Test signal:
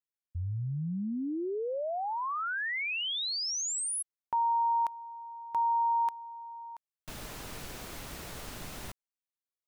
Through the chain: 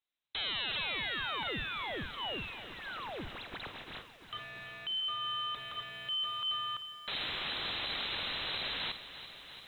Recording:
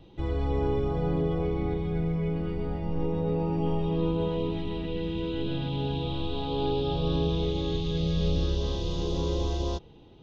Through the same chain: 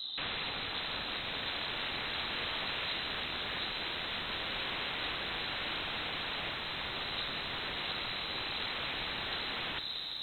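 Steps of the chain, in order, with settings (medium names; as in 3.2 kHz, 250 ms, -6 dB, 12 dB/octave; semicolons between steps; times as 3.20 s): treble shelf 2 kHz -11.5 dB; in parallel at -3 dB: compression 16:1, threshold -36 dBFS; on the sum: hard clipper -23.5 dBFS; volume shaper 84 bpm, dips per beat 1, -4 dB, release 126 ms; integer overflow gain 38.5 dB; on a send: flutter echo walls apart 9 m, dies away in 0.24 s; on the sum: frequency inversion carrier 4 kHz; bit-crushed delay 342 ms, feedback 80%, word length 11-bit, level -14 dB; trim +7.5 dB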